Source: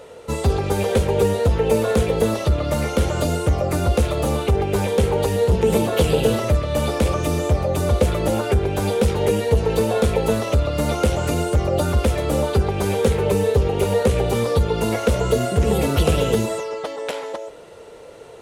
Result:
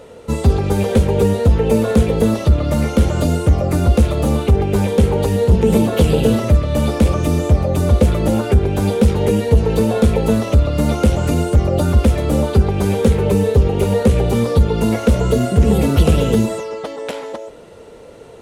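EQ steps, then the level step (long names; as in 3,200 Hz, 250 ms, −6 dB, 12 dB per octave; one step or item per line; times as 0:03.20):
low-shelf EQ 130 Hz +8 dB
parametric band 230 Hz +7 dB 0.84 octaves
0.0 dB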